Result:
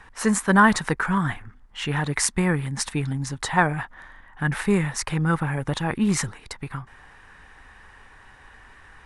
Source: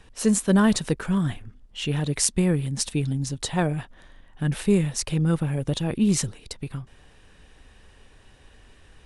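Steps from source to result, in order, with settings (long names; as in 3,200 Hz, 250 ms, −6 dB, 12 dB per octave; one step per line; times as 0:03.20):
flat-topped bell 1,300 Hz +12.5 dB
level −1 dB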